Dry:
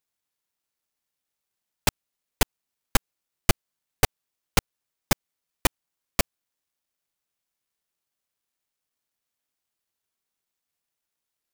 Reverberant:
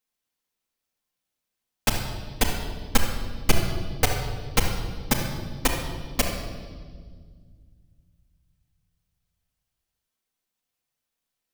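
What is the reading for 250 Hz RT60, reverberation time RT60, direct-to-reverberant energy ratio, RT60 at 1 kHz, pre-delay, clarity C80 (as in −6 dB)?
2.8 s, 1.7 s, −2.5 dB, 1.5 s, 4 ms, 5.5 dB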